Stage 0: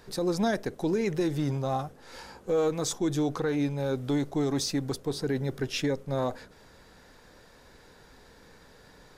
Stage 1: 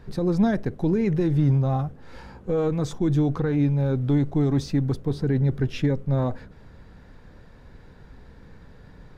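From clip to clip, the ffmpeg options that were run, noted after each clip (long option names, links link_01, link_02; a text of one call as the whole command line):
ffmpeg -i in.wav -af "bass=frequency=250:gain=13,treble=frequency=4000:gain=-12" out.wav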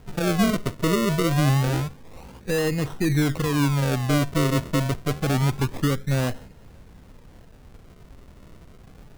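ffmpeg -i in.wav -af "acrusher=samples=37:mix=1:aa=0.000001:lfo=1:lforange=37:lforate=0.27" out.wav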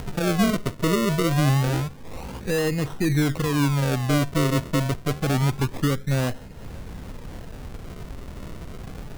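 ffmpeg -i in.wav -af "acompressor=mode=upward:threshold=-24dB:ratio=2.5" out.wav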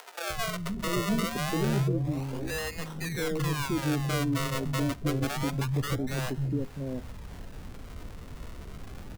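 ffmpeg -i in.wav -filter_complex "[0:a]acrossover=split=170|550[link_01][link_02][link_03];[link_01]adelay=300[link_04];[link_02]adelay=690[link_05];[link_04][link_05][link_03]amix=inputs=3:normalize=0,volume=-4.5dB" out.wav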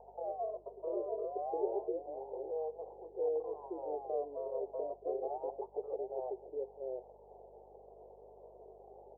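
ffmpeg -i in.wav -af "asuperpass=centerf=570:order=12:qfactor=1.2,aeval=exprs='val(0)+0.000398*(sin(2*PI*50*n/s)+sin(2*PI*2*50*n/s)/2+sin(2*PI*3*50*n/s)/3+sin(2*PI*4*50*n/s)/4+sin(2*PI*5*50*n/s)/5)':channel_layout=same" out.wav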